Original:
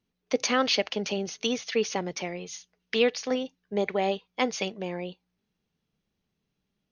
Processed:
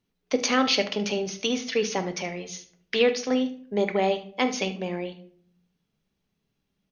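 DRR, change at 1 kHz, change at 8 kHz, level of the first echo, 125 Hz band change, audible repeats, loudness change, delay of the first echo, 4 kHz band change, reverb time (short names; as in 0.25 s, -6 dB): 7.5 dB, +2.5 dB, +2.0 dB, -15.5 dB, +3.0 dB, 1, +2.5 dB, 74 ms, +2.0 dB, 0.55 s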